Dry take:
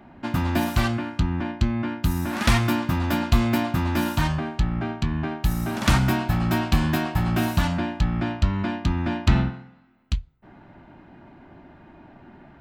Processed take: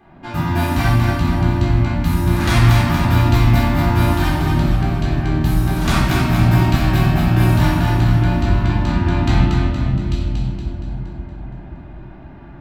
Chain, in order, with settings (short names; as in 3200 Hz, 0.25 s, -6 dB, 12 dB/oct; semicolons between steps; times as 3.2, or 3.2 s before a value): split-band echo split 700 Hz, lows 0.53 s, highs 0.234 s, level -4.5 dB; shoebox room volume 590 m³, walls mixed, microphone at 3.8 m; gain -5 dB